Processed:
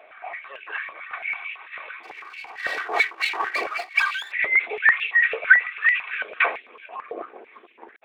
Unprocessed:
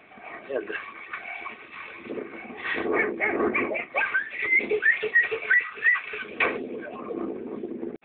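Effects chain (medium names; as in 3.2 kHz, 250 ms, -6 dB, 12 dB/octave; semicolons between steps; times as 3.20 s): 2.03–4.32 s: comb filter that takes the minimum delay 2.6 ms; step-sequenced high-pass 9 Hz 600–2600 Hz; trim -1 dB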